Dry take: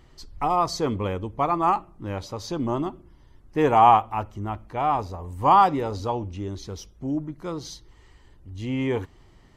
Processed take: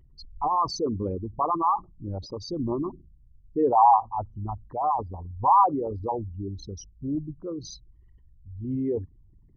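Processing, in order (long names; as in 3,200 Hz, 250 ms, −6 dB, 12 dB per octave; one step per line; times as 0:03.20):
spectral envelope exaggerated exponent 3
level −2 dB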